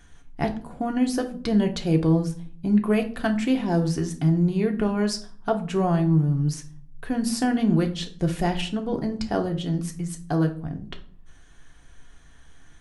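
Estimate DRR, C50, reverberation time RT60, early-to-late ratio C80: 3.0 dB, 13.5 dB, 0.50 s, 18.0 dB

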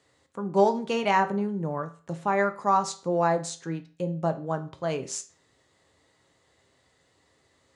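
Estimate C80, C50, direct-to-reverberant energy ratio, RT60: 19.5 dB, 14.5 dB, 7.0 dB, 0.40 s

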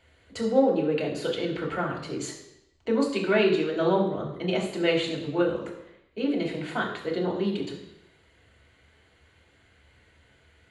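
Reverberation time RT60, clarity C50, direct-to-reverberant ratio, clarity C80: 0.85 s, 6.5 dB, -3.0 dB, 8.5 dB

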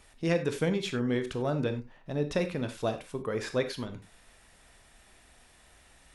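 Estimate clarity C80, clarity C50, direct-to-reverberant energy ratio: 16.0 dB, 11.5 dB, 8.0 dB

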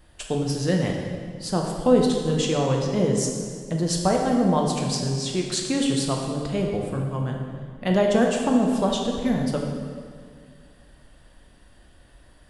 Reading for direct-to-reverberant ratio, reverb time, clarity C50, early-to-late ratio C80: 0.5 dB, 2.0 s, 2.5 dB, 4.0 dB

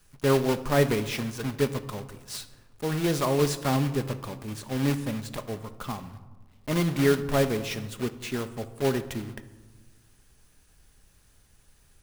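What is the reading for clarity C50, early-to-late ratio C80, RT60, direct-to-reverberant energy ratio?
14.0 dB, 16.0 dB, 1.3 s, 9.5 dB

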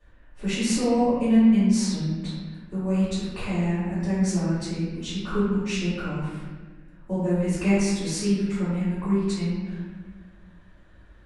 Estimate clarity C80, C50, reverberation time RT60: 0.5 dB, -2.0 dB, 1.3 s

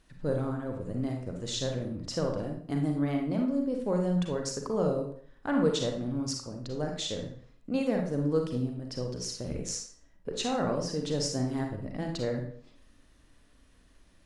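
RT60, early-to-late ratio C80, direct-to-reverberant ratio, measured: 0.50 s, 9.0 dB, 2.0 dB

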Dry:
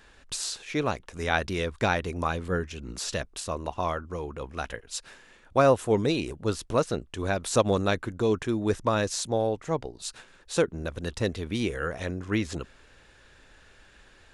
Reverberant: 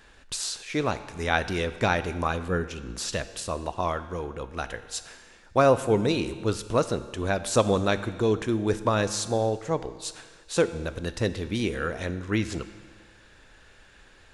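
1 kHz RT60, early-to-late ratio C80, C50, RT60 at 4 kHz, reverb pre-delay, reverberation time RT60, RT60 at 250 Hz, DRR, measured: 1.6 s, 14.0 dB, 13.0 dB, 1.4 s, 6 ms, 1.6 s, 1.6 s, 11.0 dB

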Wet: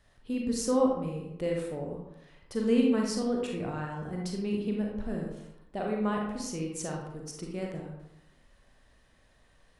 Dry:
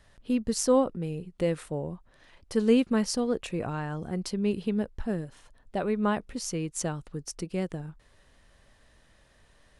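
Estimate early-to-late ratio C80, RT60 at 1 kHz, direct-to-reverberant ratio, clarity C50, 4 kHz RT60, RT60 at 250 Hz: 5.5 dB, 0.80 s, -1.0 dB, 2.0 dB, 0.50 s, 0.85 s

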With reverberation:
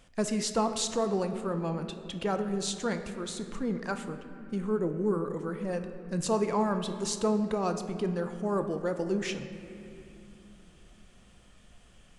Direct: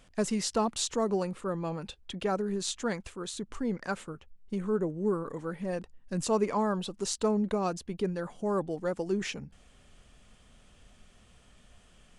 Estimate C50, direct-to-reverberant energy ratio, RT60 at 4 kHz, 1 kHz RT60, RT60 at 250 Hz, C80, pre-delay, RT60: 8.5 dB, 7.0 dB, 1.8 s, 2.5 s, 4.4 s, 9.5 dB, 4 ms, 2.7 s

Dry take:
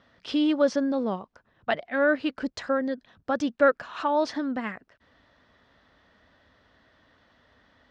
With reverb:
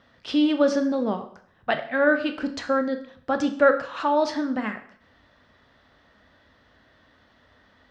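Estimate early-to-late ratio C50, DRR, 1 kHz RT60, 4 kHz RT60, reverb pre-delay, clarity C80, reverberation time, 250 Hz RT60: 11.5 dB, 7.0 dB, 0.60 s, 0.55 s, 6 ms, 14.5 dB, 0.55 s, 0.55 s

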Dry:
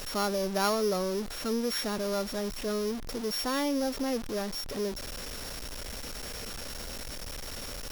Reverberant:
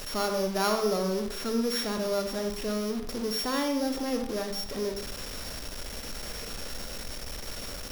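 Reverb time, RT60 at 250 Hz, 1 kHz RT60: 0.65 s, 0.70 s, 0.65 s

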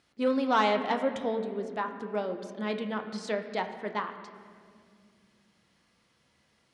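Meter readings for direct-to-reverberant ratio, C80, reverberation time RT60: 5.5 dB, 10.0 dB, 2.2 s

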